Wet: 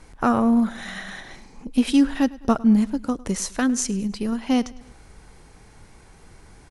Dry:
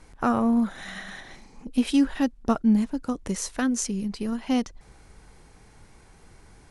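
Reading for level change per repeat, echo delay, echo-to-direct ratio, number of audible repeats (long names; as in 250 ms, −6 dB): −6.5 dB, 104 ms, −20.0 dB, 3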